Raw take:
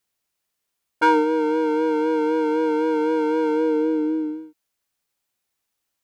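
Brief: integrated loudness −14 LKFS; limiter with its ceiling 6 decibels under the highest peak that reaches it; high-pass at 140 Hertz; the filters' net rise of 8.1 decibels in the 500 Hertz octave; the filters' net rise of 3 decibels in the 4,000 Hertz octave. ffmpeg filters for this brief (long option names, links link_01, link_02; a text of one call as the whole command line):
ffmpeg -i in.wav -af "highpass=140,equalizer=frequency=500:width_type=o:gain=8.5,equalizer=frequency=4000:width_type=o:gain=4,volume=3dB,alimiter=limit=-7dB:level=0:latency=1" out.wav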